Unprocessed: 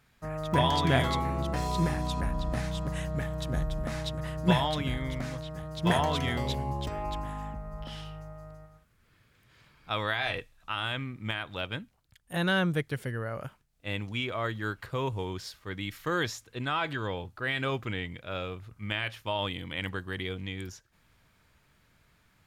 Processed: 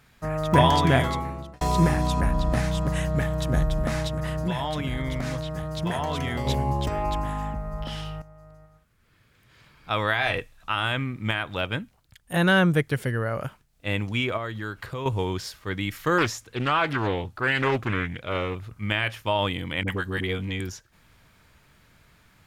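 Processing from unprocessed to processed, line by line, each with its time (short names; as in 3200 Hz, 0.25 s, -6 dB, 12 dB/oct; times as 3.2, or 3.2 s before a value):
0.69–1.61 fade out
4.07–6.47 compressor, threshold -31 dBFS
8.22–10.38 fade in, from -13.5 dB
14.37–15.06 compressor 2.5:1, threshold -39 dBFS
16.18–18.55 Doppler distortion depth 0.48 ms
19.83–20.6 dispersion highs, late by 43 ms, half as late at 540 Hz
whole clip: dynamic EQ 3900 Hz, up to -5 dB, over -48 dBFS, Q 1.9; gain +7.5 dB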